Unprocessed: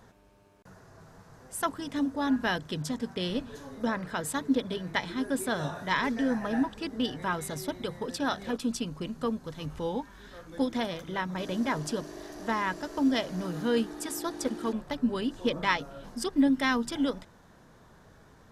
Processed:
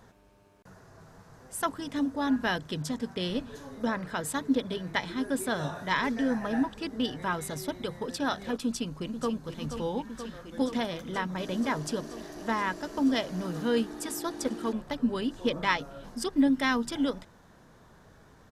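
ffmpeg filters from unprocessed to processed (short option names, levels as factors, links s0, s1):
-filter_complex "[0:a]asplit=2[s0][s1];[s1]afade=t=in:st=8.65:d=0.01,afade=t=out:st=9.34:d=0.01,aecho=0:1:480|960|1440|1920|2400|2880|3360|3840|4320|4800|5280|5760:0.354813|0.301591|0.256353|0.2179|0.185215|0.157433|0.133818|0.113745|0.0966833|0.0821808|0.0698537|0.0593756[s2];[s0][s2]amix=inputs=2:normalize=0"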